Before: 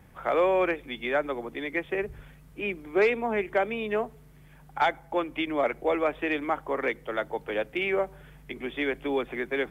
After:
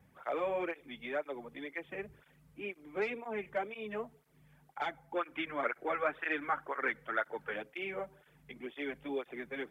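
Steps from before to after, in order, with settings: 5.15–7.56 s: peaking EQ 1.5 kHz +14 dB 0.86 oct; cancelling through-zero flanger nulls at 2 Hz, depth 3.3 ms; trim -8 dB

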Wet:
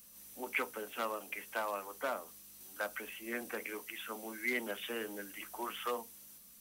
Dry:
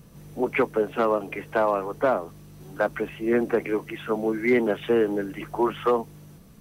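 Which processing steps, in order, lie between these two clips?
pre-emphasis filter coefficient 0.97; on a send: reverberation RT60 0.20 s, pre-delay 3 ms, DRR 13 dB; on the sum: trim +4 dB

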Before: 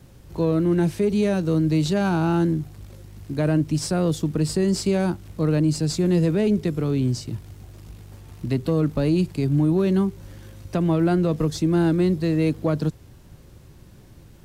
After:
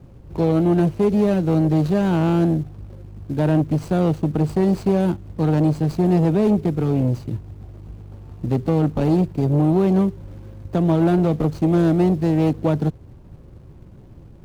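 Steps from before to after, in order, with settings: median filter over 25 samples; transformer saturation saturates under 270 Hz; trim +4.5 dB

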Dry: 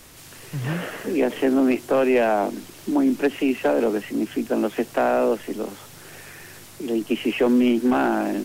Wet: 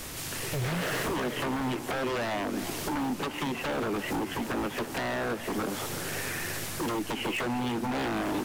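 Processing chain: compression 16:1, threshold -30 dBFS, peak gain reduction 16 dB; wavefolder -33 dBFS; modulated delay 335 ms, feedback 70%, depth 195 cents, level -12.5 dB; trim +7.5 dB

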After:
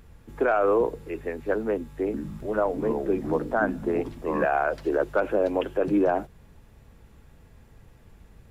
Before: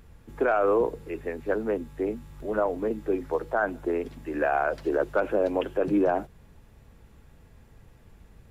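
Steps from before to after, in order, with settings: 2.04–4.45 s: ever faster or slower copies 94 ms, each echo -6 st, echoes 2, each echo -6 dB; trim +1 dB

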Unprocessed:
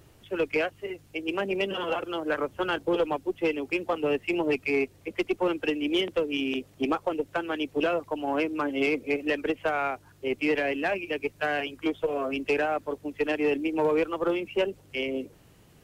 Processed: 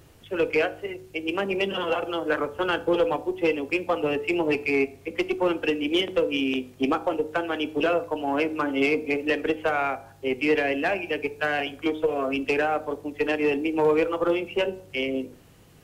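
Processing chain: de-hum 62.26 Hz, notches 16; on a send: reverberation RT60 0.45 s, pre-delay 3 ms, DRR 13.5 dB; on the sum: trim +3 dB

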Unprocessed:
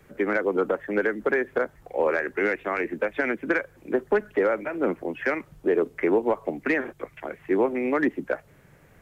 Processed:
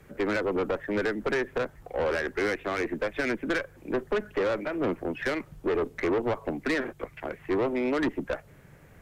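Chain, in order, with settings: valve stage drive 24 dB, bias 0.3; bass shelf 160 Hz +4 dB; trim +1 dB

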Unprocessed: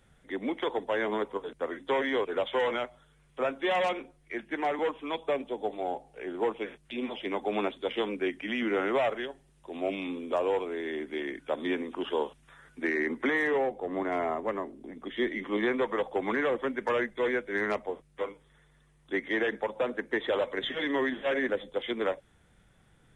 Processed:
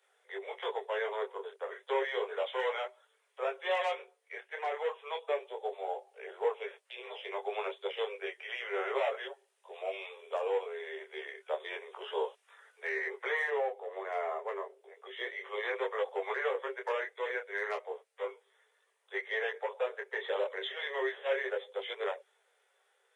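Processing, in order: Chebyshev high-pass 390 Hz, order 10; detune thickener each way 11 cents

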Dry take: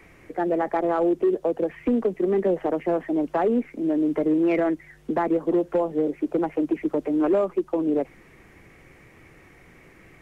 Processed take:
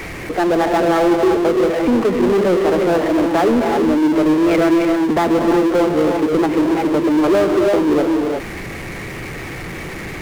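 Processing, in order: gated-style reverb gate 380 ms rising, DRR 4 dB; power-law waveshaper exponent 0.5; trim +2 dB

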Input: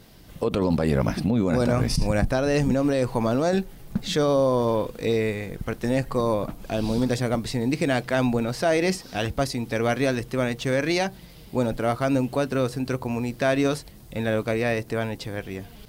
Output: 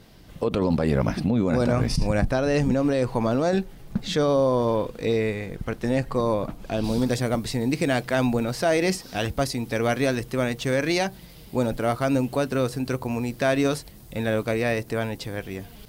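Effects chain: treble shelf 8.5 kHz -7.5 dB, from 6.84 s +4 dB

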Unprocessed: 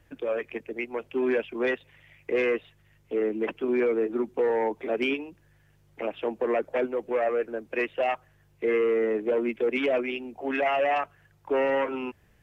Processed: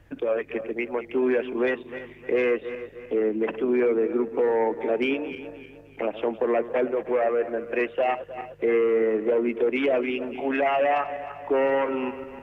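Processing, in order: backward echo that repeats 153 ms, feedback 59%, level -14 dB; treble shelf 3.1 kHz -8 dB; in parallel at +1 dB: compression, threshold -33 dBFS, peak gain reduction 12 dB

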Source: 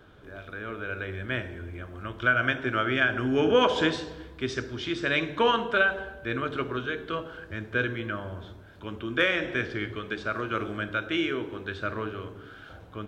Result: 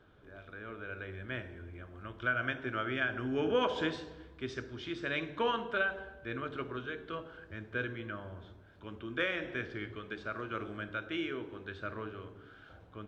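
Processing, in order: treble shelf 6.9 kHz -9.5 dB; trim -8.5 dB

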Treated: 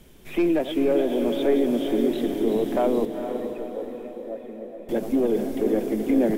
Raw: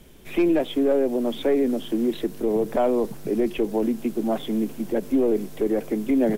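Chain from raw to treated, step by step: backward echo that repeats 213 ms, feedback 82%, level -10 dB; 3.05–4.89 s: cascade formant filter e; echo that smears into a reverb 468 ms, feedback 50%, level -8 dB; trim -1.5 dB

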